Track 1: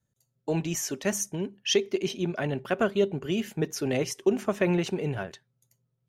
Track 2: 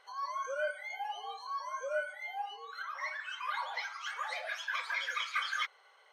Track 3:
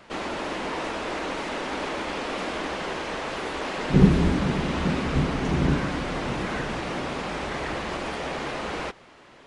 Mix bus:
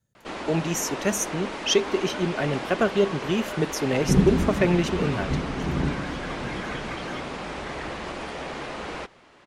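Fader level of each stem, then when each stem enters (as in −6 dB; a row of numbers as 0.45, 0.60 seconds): +3.0, −6.0, −3.0 decibels; 0.00, 1.55, 0.15 seconds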